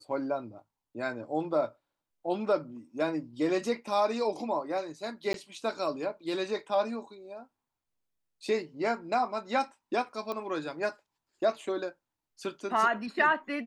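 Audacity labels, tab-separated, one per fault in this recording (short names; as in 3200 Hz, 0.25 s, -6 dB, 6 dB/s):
5.330000	5.340000	gap 12 ms
10.320000	10.320000	pop -22 dBFS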